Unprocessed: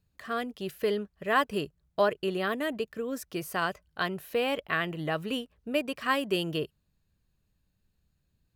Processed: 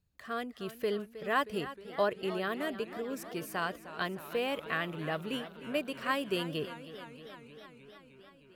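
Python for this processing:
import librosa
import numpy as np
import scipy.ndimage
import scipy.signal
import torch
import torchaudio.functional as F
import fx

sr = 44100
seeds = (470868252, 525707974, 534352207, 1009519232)

y = fx.echo_warbled(x, sr, ms=311, feedback_pct=74, rate_hz=2.8, cents=130, wet_db=-14.0)
y = y * 10.0 ** (-4.5 / 20.0)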